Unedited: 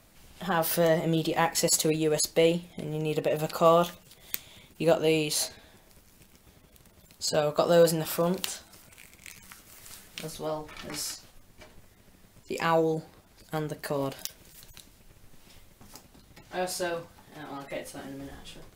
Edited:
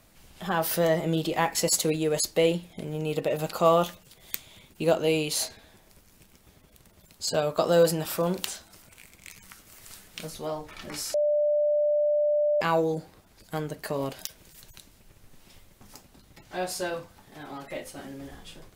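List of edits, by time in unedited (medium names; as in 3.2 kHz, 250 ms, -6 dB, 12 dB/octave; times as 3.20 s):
11.14–12.61 s: bleep 593 Hz -20.5 dBFS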